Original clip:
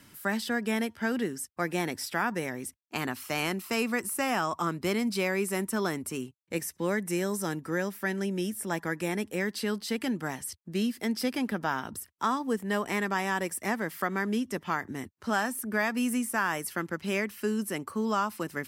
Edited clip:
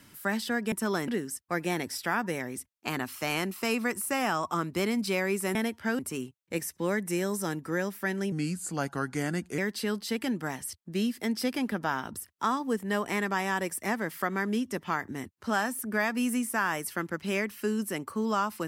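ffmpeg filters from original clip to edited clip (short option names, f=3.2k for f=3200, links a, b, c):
-filter_complex "[0:a]asplit=7[a][b][c][d][e][f][g];[a]atrim=end=0.722[h];[b]atrim=start=5.628:end=5.992[i];[c]atrim=start=1.158:end=5.632[j];[d]atrim=start=0.718:end=1.162[k];[e]atrim=start=5.988:end=8.324[l];[f]atrim=start=8.32:end=9.38,asetpts=PTS-STARTPTS,asetrate=37044,aresample=44100[m];[g]atrim=start=9.376[n];[h][i]acrossfade=d=0.004:c1=hsin:c2=hsin[o];[o][j]acrossfade=d=0.004:c1=hsin:c2=hsin[p];[p][k]acrossfade=d=0.004:c1=hsin:c2=hsin[q];[q][l]acrossfade=d=0.004:c1=hsin:c2=hsin[r];[r][m]acrossfade=d=0.004:c1=hsin:c2=hsin[s];[s][n]acrossfade=d=0.004:c1=hsin:c2=hsin"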